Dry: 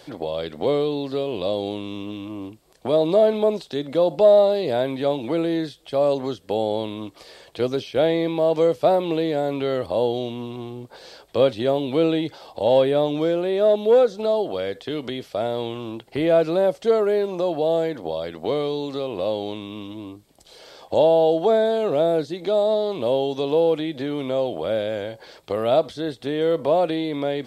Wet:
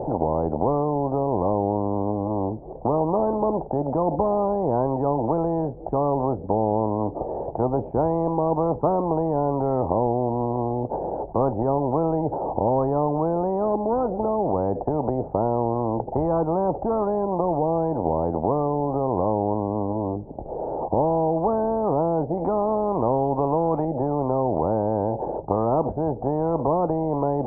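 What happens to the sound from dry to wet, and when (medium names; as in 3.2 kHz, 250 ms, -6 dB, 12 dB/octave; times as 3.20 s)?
22.37–23.85 s: peaking EQ 3.5 kHz +12.5 dB 2.6 oct
whole clip: Chebyshev low-pass 870 Hz, order 5; spectrum-flattening compressor 4:1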